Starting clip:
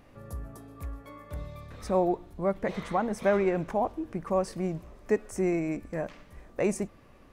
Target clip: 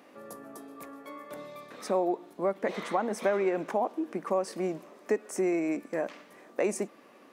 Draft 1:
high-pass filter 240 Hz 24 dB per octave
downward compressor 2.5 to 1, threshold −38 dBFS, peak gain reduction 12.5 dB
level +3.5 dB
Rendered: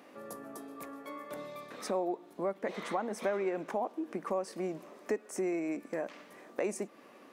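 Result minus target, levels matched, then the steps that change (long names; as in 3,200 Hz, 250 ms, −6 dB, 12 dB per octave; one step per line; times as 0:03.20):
downward compressor: peak gain reduction +5.5 dB
change: downward compressor 2.5 to 1, threshold −29 dBFS, peak gain reduction 7.5 dB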